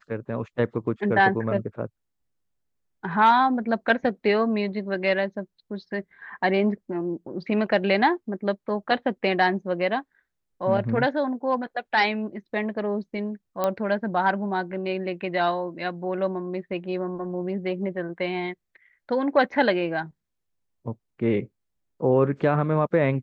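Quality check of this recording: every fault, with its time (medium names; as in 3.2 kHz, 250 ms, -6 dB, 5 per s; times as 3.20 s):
13.64 s: pop -11 dBFS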